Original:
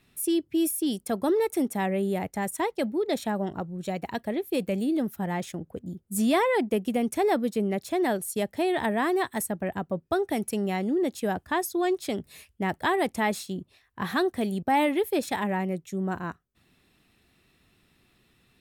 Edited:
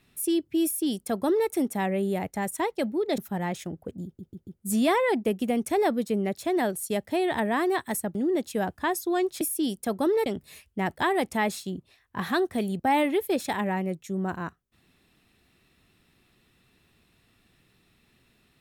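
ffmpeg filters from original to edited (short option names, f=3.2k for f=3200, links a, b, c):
-filter_complex "[0:a]asplit=8[a][b][c][d][e][f][g][h];[a]atrim=end=3.182[i];[b]atrim=start=5.058:end=6.072[j];[c]atrim=start=5.928:end=6.072[k];[d]atrim=start=5.928:end=6.072[l];[e]atrim=start=5.928:end=9.612[m];[f]atrim=start=10.828:end=12.092[n];[g]atrim=start=0.638:end=1.492[o];[h]atrim=start=12.088[p];[i][j]acrossfade=d=0.004:c1=hsin:c2=hsin[q];[q][k]acrossfade=d=0.004:c1=hsin:c2=hsin[r];[r][l]acrossfade=d=0.004:c1=hsin:c2=hsin[s];[s][m]acrossfade=d=0.004:c1=hsin:c2=hsin[t];[t][n]acrossfade=d=0.004:c1=hsin:c2=hsin[u];[u][o]acrossfade=d=0.004:c1=hsin:c2=hsin[v];[v][p]acrossfade=d=0.004:c1=hsin:c2=hsin"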